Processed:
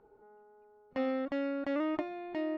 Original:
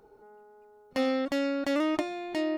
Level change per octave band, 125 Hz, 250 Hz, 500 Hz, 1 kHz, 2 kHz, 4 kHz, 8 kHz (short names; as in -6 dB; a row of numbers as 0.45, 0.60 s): n/a, -5.0 dB, -5.0 dB, -5.0 dB, -7.0 dB, -13.5 dB, under -20 dB